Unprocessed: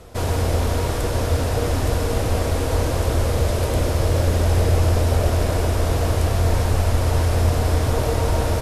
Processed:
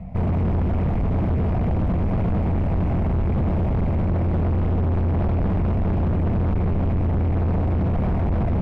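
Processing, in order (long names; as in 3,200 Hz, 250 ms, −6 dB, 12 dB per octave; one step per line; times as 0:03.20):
drawn EQ curve 120 Hz 0 dB, 190 Hz +14 dB, 380 Hz −28 dB, 680 Hz −3 dB, 1,500 Hz −23 dB, 2,200 Hz −7 dB, 3,500 Hz −27 dB, 6,500 Hz −26 dB, 13,000 Hz −8 dB
in parallel at −2.5 dB: brickwall limiter −16 dBFS, peak gain reduction 8.5 dB
on the sum: gain into a clipping stage and back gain 22.5 dB
high-frequency loss of the air 170 metres
level +3.5 dB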